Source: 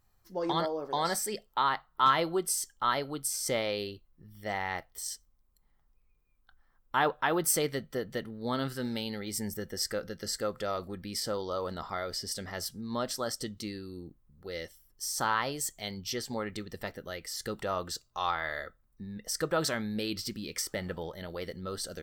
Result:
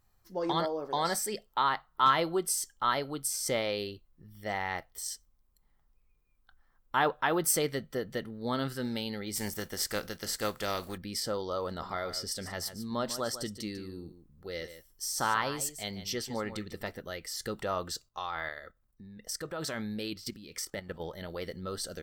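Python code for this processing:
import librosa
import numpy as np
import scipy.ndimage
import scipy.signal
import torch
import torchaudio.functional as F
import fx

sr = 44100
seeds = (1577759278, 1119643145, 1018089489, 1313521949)

y = fx.spec_flatten(x, sr, power=0.61, at=(9.35, 10.96), fade=0.02)
y = fx.echo_single(y, sr, ms=146, db=-12.0, at=(11.79, 16.99), fade=0.02)
y = fx.level_steps(y, sr, step_db=12, at=(18.05, 20.99), fade=0.02)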